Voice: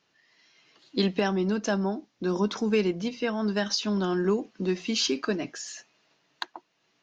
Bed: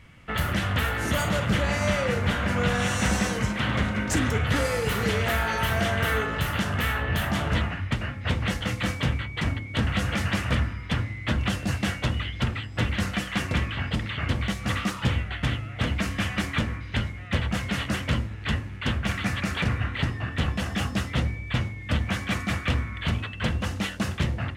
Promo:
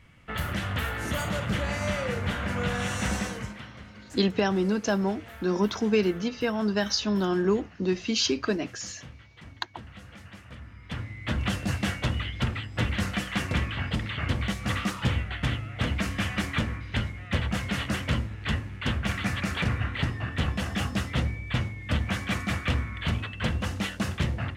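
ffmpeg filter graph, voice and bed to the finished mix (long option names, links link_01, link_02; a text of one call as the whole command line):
ffmpeg -i stem1.wav -i stem2.wav -filter_complex "[0:a]adelay=3200,volume=1dB[link_01];[1:a]volume=14.5dB,afade=type=out:start_time=3.14:duration=0.56:silence=0.158489,afade=type=in:start_time=10.6:duration=0.92:silence=0.112202[link_02];[link_01][link_02]amix=inputs=2:normalize=0" out.wav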